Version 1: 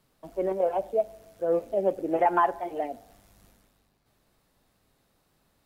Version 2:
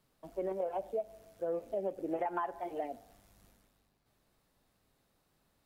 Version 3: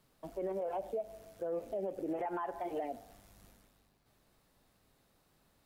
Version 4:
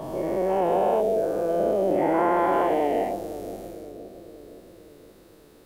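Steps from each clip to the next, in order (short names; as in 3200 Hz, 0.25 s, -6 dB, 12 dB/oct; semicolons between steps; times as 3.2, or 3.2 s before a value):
compressor 6:1, threshold -26 dBFS, peak gain reduction 9 dB; gain -5.5 dB
limiter -33 dBFS, peak gain reduction 10 dB; gain +3.5 dB
spectral dilation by 0.48 s; analogue delay 0.519 s, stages 2048, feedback 59%, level -11 dB; gain +7.5 dB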